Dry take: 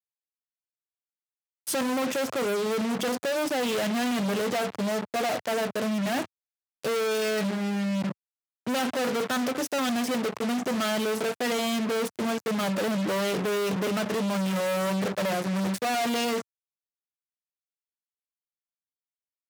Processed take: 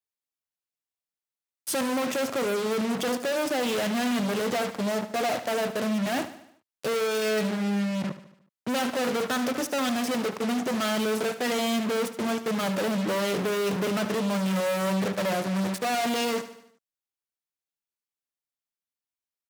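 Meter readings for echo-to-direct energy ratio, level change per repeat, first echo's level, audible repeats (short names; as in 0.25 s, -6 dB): -11.5 dB, -5.5 dB, -13.0 dB, 4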